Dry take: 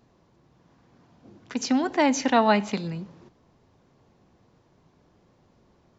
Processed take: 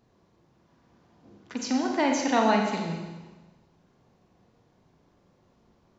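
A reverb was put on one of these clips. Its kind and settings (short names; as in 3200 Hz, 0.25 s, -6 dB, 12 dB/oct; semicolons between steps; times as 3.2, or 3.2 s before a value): Schroeder reverb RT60 1.2 s, combs from 32 ms, DRR 1.5 dB; gain -4.5 dB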